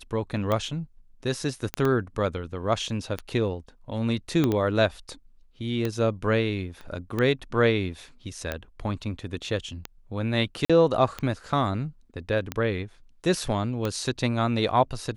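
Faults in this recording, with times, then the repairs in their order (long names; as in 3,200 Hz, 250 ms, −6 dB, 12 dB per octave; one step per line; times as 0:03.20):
scratch tick 45 rpm −14 dBFS
0:01.74: click −12 dBFS
0:04.44: click −11 dBFS
0:06.81: click −29 dBFS
0:10.65–0:10.70: drop-out 46 ms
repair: click removal
repair the gap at 0:10.65, 46 ms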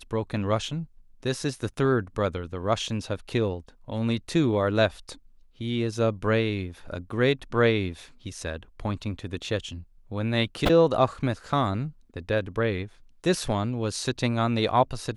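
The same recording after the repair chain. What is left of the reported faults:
0:04.44: click
0:06.81: click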